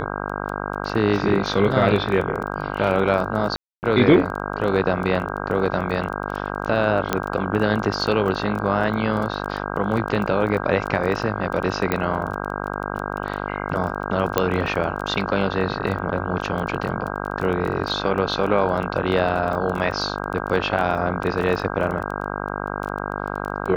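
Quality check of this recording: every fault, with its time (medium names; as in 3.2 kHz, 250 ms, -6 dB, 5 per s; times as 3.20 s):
buzz 50 Hz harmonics 32 -28 dBFS
crackle 15 per s -27 dBFS
3.56–3.83 s: dropout 269 ms
7.13 s: pop -5 dBFS
11.92 s: pop -8 dBFS
14.38 s: pop -4 dBFS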